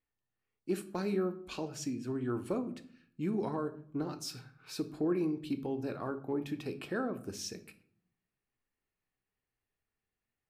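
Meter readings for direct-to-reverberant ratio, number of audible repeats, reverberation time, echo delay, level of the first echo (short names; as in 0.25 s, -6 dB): 9.0 dB, none, 0.60 s, none, none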